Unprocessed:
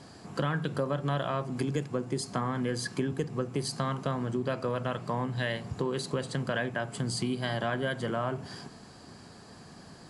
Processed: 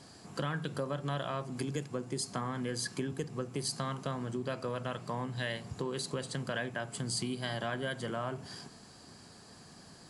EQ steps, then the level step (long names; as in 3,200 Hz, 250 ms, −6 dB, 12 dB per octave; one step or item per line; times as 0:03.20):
high-shelf EQ 3,700 Hz +8 dB
−5.5 dB